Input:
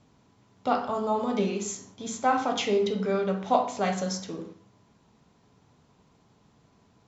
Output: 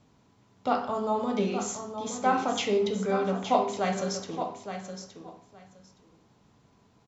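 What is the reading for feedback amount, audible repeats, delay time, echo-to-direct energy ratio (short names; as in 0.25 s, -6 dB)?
16%, 2, 0.868 s, -9.0 dB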